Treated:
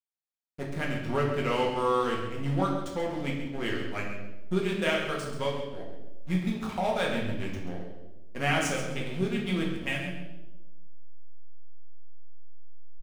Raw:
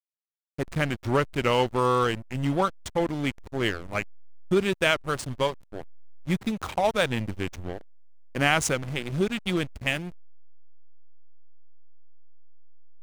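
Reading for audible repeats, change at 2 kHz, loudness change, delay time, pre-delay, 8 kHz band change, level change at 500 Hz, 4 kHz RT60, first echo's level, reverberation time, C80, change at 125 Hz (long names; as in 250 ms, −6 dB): 1, −4.0 dB, −3.5 dB, 134 ms, 4 ms, −6.5 dB, −3.5 dB, 0.85 s, −10.0 dB, 1.0 s, 5.0 dB, −2.5 dB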